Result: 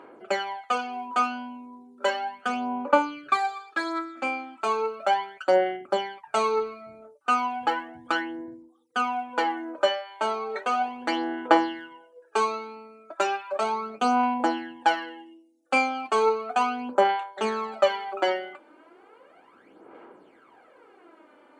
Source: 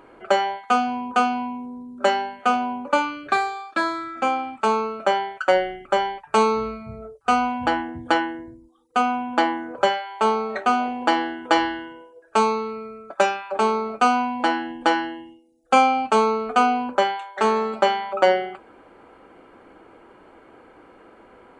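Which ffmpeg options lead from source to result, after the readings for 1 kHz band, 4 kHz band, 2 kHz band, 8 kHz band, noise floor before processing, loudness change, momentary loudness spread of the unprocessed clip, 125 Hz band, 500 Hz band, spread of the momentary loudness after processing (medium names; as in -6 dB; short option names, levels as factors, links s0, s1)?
-5.0 dB, -4.0 dB, -4.0 dB, -4.5 dB, -51 dBFS, -4.5 dB, 8 LU, under -10 dB, -4.0 dB, 10 LU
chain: -af "highpass=240,aphaser=in_gain=1:out_gain=1:delay=3.4:decay=0.64:speed=0.35:type=sinusoidal,volume=0.473"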